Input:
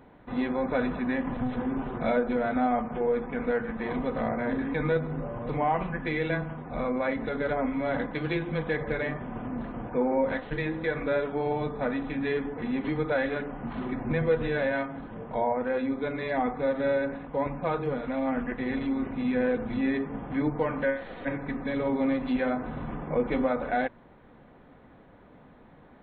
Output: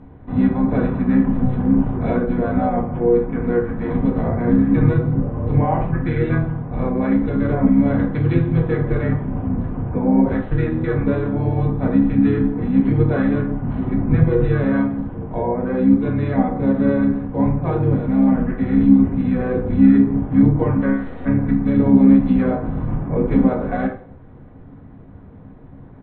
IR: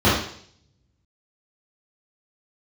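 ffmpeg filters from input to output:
-filter_complex "[0:a]asplit=2[s0][s1];[1:a]atrim=start_sample=2205,asetrate=57330,aresample=44100[s2];[s1][s2]afir=irnorm=-1:irlink=0,volume=0.0708[s3];[s0][s3]amix=inputs=2:normalize=0,asplit=2[s4][s5];[s5]asetrate=33038,aresample=44100,atempo=1.33484,volume=0.562[s6];[s4][s6]amix=inputs=2:normalize=0,aemphasis=mode=reproduction:type=bsi,volume=0.891"

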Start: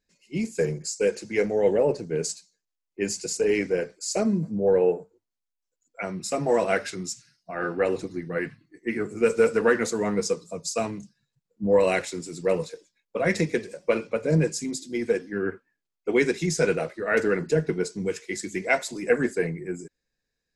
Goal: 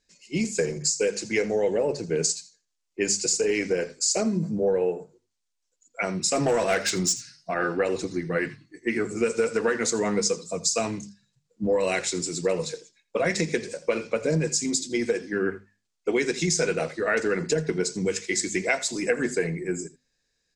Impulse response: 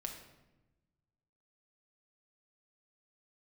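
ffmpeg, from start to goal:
-filter_complex "[0:a]lowpass=f=8000:w=0.5412,lowpass=f=8000:w=1.3066,highshelf=f=4200:g=11.5,bandreject=f=50:t=h:w=6,bandreject=f=100:t=h:w=6,bandreject=f=150:t=h:w=6,bandreject=f=200:t=h:w=6,bandreject=f=250:t=h:w=6,acompressor=threshold=0.0562:ratio=5,asettb=1/sr,asplit=3[s0][s1][s2];[s0]atrim=end=6.354[s3];[s1]atrim=start=6.35:end=7.54,asetpts=PTS-STARTPTS,afade=t=in:d=0.004:c=qsin,afade=t=out:st=1.186:d=0.004:c=qsin,aeval=exprs='0.133*(cos(1*acos(clip(val(0)/0.133,-1,1)))-cos(1*PI/2))+0.0168*(cos(5*acos(clip(val(0)/0.133,-1,1)))-cos(5*PI/2))':c=same[s4];[s2]atrim=start=7.536[s5];[s3][s4]acrossfade=d=0.004:c1=hsin:c2=qsin[s6];[s6][s5]acrossfade=d=0.004:c1=qsin:c2=hsin,asplit=2[s7][s8];[s8]aecho=0:1:83:0.112[s9];[s7][s9]amix=inputs=2:normalize=0,volume=1.58"

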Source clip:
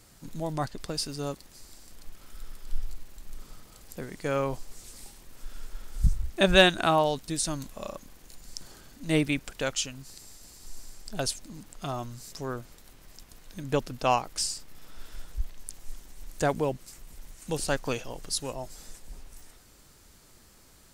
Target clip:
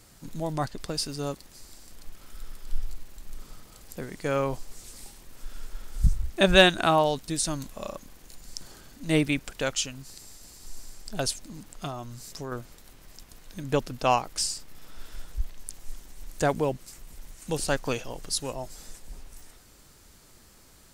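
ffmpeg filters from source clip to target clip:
-filter_complex "[0:a]asettb=1/sr,asplit=3[s0][s1][s2];[s0]atrim=end=11.874[s3];[s1]atrim=start=11.87:end=12.52,asetpts=PTS-STARTPTS,afade=t=in:d=0.004:c=qsin,afade=t=out:st=0.646:d=0.004:c=qsin,acompressor=threshold=0.0178:ratio=3[s4];[s2]atrim=start=12.516[s5];[s3][s4]acrossfade=d=0.004:c1=hsin:c2=qsin[s6];[s6][s5]acrossfade=d=0.004:c1=qsin:c2=hsin,volume=1.19"

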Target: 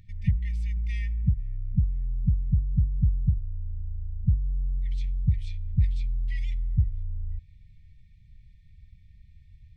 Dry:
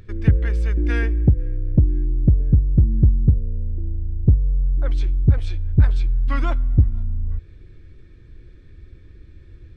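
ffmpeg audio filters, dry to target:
-af "afftfilt=real='re*(1-between(b*sr/4096,210,1800))':imag='im*(1-between(b*sr/4096,210,1800))':win_size=4096:overlap=0.75,volume=0.376"

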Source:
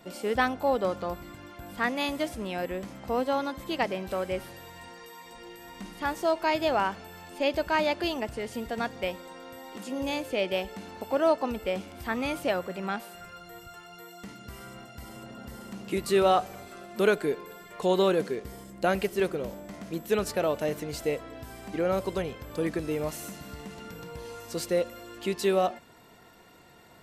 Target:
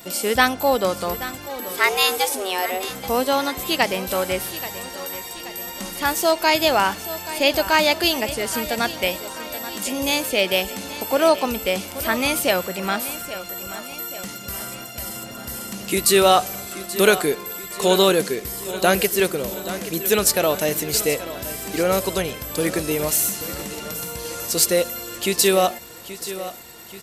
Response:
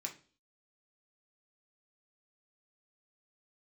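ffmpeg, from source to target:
-filter_complex "[0:a]asplit=3[s0][s1][s2];[s0]afade=t=out:st=1.48:d=0.02[s3];[s1]afreqshift=190,afade=t=in:st=1.48:d=0.02,afade=t=out:st=2.88:d=0.02[s4];[s2]afade=t=in:st=2.88:d=0.02[s5];[s3][s4][s5]amix=inputs=3:normalize=0,crystalizer=i=4.5:c=0,aecho=1:1:830|1660|2490|3320|4150:0.2|0.108|0.0582|0.0314|0.017,volume=2"

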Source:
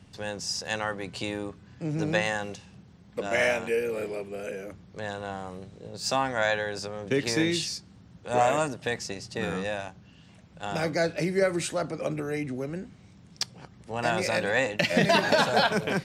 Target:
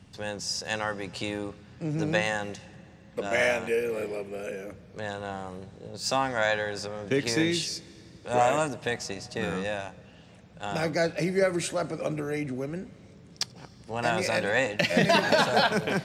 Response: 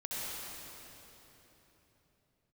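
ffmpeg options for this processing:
-filter_complex "[0:a]asplit=2[s0][s1];[1:a]atrim=start_sample=2205,adelay=87[s2];[s1][s2]afir=irnorm=-1:irlink=0,volume=0.0501[s3];[s0][s3]amix=inputs=2:normalize=0"

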